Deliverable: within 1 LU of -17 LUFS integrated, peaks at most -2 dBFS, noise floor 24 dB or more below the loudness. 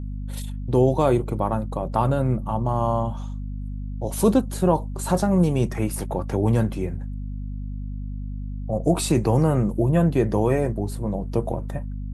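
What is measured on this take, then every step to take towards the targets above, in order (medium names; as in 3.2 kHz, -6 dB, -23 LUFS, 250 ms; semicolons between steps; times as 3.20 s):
hum 50 Hz; highest harmonic 250 Hz; hum level -28 dBFS; loudness -23.0 LUFS; peak level -6.0 dBFS; loudness target -17.0 LUFS
-> hum notches 50/100/150/200/250 Hz; trim +6 dB; peak limiter -2 dBFS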